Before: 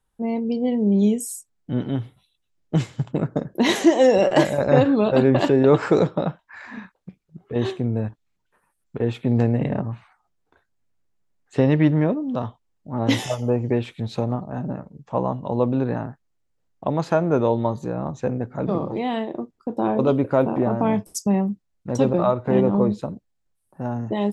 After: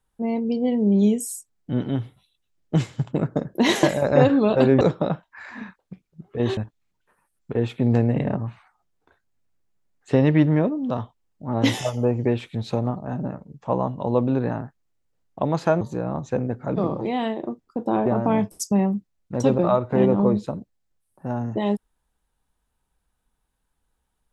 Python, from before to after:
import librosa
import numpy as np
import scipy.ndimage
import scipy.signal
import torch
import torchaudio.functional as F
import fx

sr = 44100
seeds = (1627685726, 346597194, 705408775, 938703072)

y = fx.edit(x, sr, fx.cut(start_s=3.83, length_s=0.56),
    fx.cut(start_s=5.37, length_s=0.6),
    fx.cut(start_s=7.73, length_s=0.29),
    fx.cut(start_s=17.26, length_s=0.46),
    fx.cut(start_s=19.97, length_s=0.64), tone=tone)